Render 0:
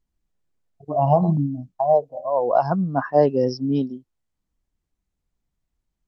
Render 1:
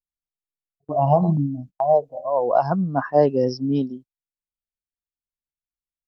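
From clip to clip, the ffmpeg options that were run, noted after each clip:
-af "agate=range=-26dB:threshold=-39dB:ratio=16:detection=peak"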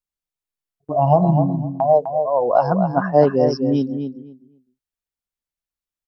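-filter_complex "[0:a]asplit=2[a][b];[b]adelay=254,lowpass=f=2.4k:p=1,volume=-7dB,asplit=2[c][d];[d]adelay=254,lowpass=f=2.4k:p=1,volume=0.19,asplit=2[e][f];[f]adelay=254,lowpass=f=2.4k:p=1,volume=0.19[g];[a][c][e][g]amix=inputs=4:normalize=0,volume=2.5dB"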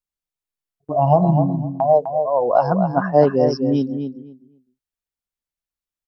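-af anull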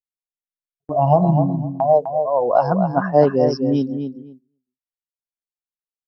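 -af "agate=range=-18dB:threshold=-44dB:ratio=16:detection=peak"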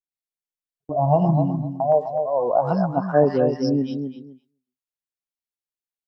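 -filter_complex "[0:a]acrossover=split=1100[a][b];[b]adelay=120[c];[a][c]amix=inputs=2:normalize=0,volume=-2.5dB"

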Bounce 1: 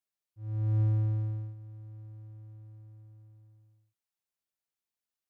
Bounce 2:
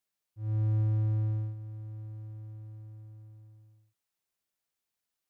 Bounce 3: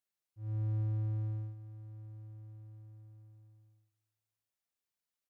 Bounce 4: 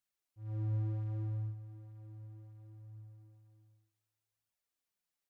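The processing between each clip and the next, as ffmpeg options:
-af "acompressor=threshold=-30dB:ratio=4,volume=4.5dB"
-filter_complex "[0:a]asplit=2[a][b];[b]adelay=308,lowpass=f=2k:p=1,volume=-23dB,asplit=2[c][d];[d]adelay=308,lowpass=f=2k:p=1,volume=0.34[e];[a][c][e]amix=inputs=3:normalize=0,volume=-6dB"
-af "flanger=delay=0.6:depth=6.8:regen=37:speed=0.67:shape=triangular,volume=4.5dB"

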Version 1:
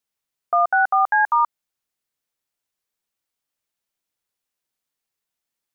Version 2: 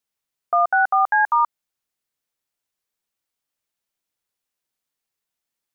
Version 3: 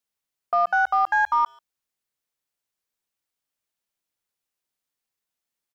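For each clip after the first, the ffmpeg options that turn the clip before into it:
-af anull
-filter_complex "[0:a]asplit=2[a][b];[b]adelay=140,highpass=300,lowpass=3.4k,asoftclip=type=hard:threshold=-20dB,volume=-27dB[c];[a][c]amix=inputs=2:normalize=0,aeval=exprs='0.316*(cos(1*acos(clip(val(0)/0.316,-1,1)))-cos(1*PI/2))+0.00891*(cos(2*acos(clip(val(0)/0.316,-1,1)))-cos(2*PI/2))+0.002*(cos(4*acos(clip(val(0)/0.316,-1,1)))-cos(4*PI/2))+0.00708*(cos(5*acos(clip(val(0)/0.316,-1,1)))-cos(5*PI/2))':c=same,volume=-3dB"

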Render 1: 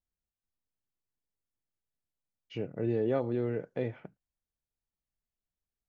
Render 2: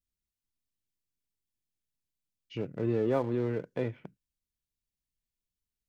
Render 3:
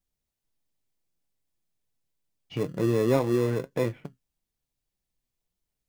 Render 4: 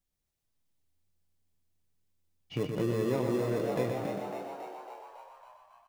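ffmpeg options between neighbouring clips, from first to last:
-filter_complex "[0:a]equalizer=f=1k:w=5.8:g=11.5,acrossover=split=450|1800[a][b][c];[b]aeval=exprs='sgn(val(0))*max(abs(val(0))-0.00355,0)':c=same[d];[a][d][c]amix=inputs=3:normalize=0,volume=1.5dB"
-filter_complex "[0:a]flanger=delay=5.4:depth=2.5:regen=57:speed=1.8:shape=triangular,asplit=2[a][b];[b]acrusher=samples=29:mix=1:aa=0.000001,volume=-9dB[c];[a][c]amix=inputs=2:normalize=0,volume=8dB"
-filter_complex "[0:a]asplit=2[a][b];[b]asplit=8[c][d][e][f][g][h][i][j];[c]adelay=276,afreqshift=83,volume=-10.5dB[k];[d]adelay=552,afreqshift=166,volume=-14.5dB[l];[e]adelay=828,afreqshift=249,volume=-18.5dB[m];[f]adelay=1104,afreqshift=332,volume=-22.5dB[n];[g]adelay=1380,afreqshift=415,volume=-26.6dB[o];[h]adelay=1656,afreqshift=498,volume=-30.6dB[p];[i]adelay=1932,afreqshift=581,volume=-34.6dB[q];[j]adelay=2208,afreqshift=664,volume=-38.6dB[r];[k][l][m][n][o][p][q][r]amix=inputs=8:normalize=0[s];[a][s]amix=inputs=2:normalize=0,acompressor=threshold=-25dB:ratio=6,asplit=2[t][u];[u]aecho=0:1:122|244|366|488|610|732:0.531|0.255|0.122|0.0587|0.0282|0.0135[v];[t][v]amix=inputs=2:normalize=0,volume=-1.5dB"

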